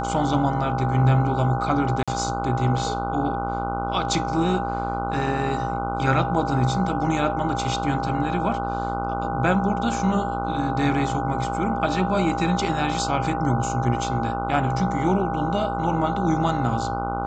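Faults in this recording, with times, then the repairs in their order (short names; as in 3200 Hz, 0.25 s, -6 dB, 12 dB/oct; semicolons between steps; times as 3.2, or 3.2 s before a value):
buzz 60 Hz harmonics 25 -29 dBFS
tone 800 Hz -27 dBFS
2.03–2.08 gap 46 ms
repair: de-hum 60 Hz, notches 25; notch 800 Hz, Q 30; interpolate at 2.03, 46 ms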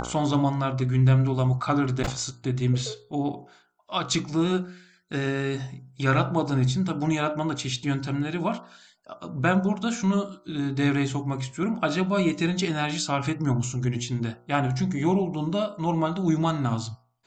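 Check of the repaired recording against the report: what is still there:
none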